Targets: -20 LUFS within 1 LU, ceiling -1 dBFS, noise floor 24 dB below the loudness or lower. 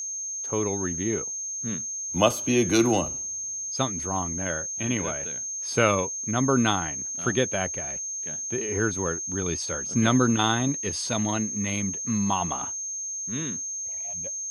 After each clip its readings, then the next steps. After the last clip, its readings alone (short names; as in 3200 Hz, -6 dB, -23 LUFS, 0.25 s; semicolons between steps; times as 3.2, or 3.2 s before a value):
steady tone 6400 Hz; tone level -30 dBFS; loudness -26.0 LUFS; peak -5.0 dBFS; loudness target -20.0 LUFS
-> notch 6400 Hz, Q 30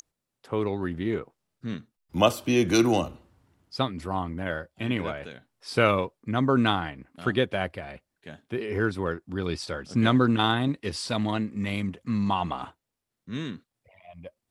steady tone none; loudness -27.5 LUFS; peak -5.5 dBFS; loudness target -20.0 LUFS
-> gain +7.5 dB; limiter -1 dBFS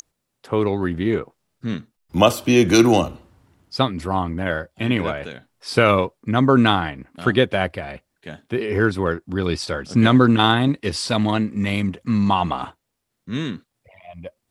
loudness -20.0 LUFS; peak -1.0 dBFS; noise floor -77 dBFS